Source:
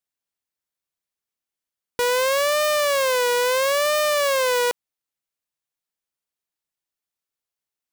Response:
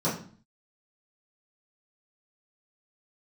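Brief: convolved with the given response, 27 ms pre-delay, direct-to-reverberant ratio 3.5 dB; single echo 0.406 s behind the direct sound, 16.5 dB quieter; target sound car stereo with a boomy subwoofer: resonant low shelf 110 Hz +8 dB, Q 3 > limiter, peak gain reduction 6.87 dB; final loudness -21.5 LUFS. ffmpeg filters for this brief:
-filter_complex "[0:a]aecho=1:1:406:0.15,asplit=2[a][b];[1:a]atrim=start_sample=2205,adelay=27[c];[b][c]afir=irnorm=-1:irlink=0,volume=-14.5dB[d];[a][d]amix=inputs=2:normalize=0,lowshelf=f=110:t=q:w=3:g=8,volume=-0.5dB,alimiter=limit=-14.5dB:level=0:latency=1"

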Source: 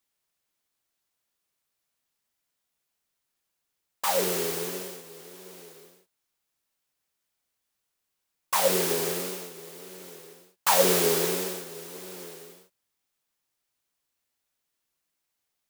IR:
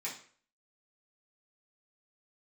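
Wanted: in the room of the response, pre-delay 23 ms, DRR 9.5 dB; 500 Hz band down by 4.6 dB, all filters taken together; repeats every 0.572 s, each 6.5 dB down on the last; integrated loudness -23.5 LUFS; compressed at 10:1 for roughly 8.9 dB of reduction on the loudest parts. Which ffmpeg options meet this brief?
-filter_complex "[0:a]equalizer=f=500:t=o:g=-5.5,acompressor=threshold=-27dB:ratio=10,aecho=1:1:572|1144|1716|2288|2860|3432:0.473|0.222|0.105|0.0491|0.0231|0.0109,asplit=2[a][b];[1:a]atrim=start_sample=2205,adelay=23[c];[b][c]afir=irnorm=-1:irlink=0,volume=-11.5dB[d];[a][d]amix=inputs=2:normalize=0,volume=9dB"

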